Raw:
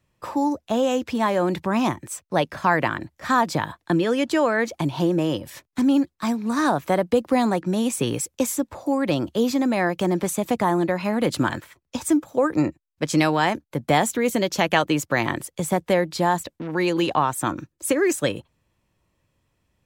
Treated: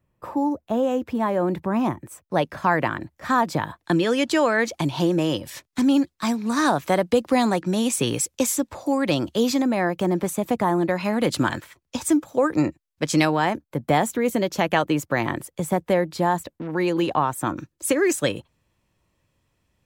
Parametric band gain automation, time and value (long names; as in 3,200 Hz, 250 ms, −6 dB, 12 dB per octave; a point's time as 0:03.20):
parametric band 5,200 Hz 2.7 octaves
−12.5 dB
from 0:02.29 −4 dB
from 0:03.84 +4.5 dB
from 0:09.62 −4.5 dB
from 0:10.89 +2 dB
from 0:13.25 −5.5 dB
from 0:17.57 +1.5 dB